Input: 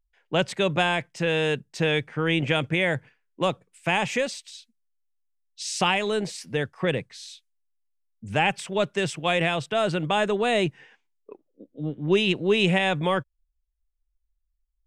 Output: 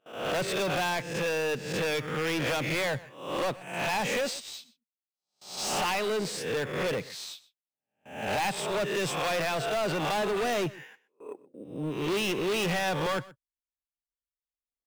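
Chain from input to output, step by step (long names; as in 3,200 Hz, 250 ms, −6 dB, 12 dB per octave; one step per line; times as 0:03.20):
peak hold with a rise ahead of every peak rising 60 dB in 0.55 s
noise gate with hold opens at −43 dBFS
high-pass filter 220 Hz 6 dB per octave
in parallel at −9.5 dB: sample-rate reduction 8,800 Hz, jitter 0%
on the sum: soft clipping −26 dBFS, distortion −5 dB
on a send: single-tap delay 125 ms −20 dB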